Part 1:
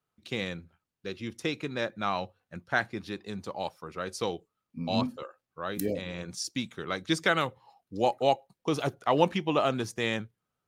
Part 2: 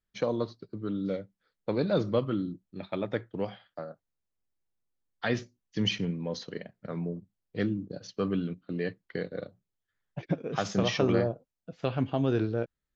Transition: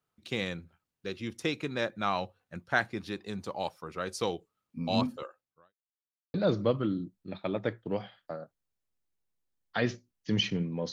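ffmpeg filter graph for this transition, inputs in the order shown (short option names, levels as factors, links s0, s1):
-filter_complex "[0:a]apad=whole_dur=10.92,atrim=end=10.92,asplit=2[s0][s1];[s0]atrim=end=5.74,asetpts=PTS-STARTPTS,afade=t=out:st=5.24:d=0.5:c=qua[s2];[s1]atrim=start=5.74:end=6.34,asetpts=PTS-STARTPTS,volume=0[s3];[1:a]atrim=start=1.82:end=6.4,asetpts=PTS-STARTPTS,afade=t=in:d=0.004:c=hsin[s4];[s2][s3][s4]concat=n=3:v=0:a=1"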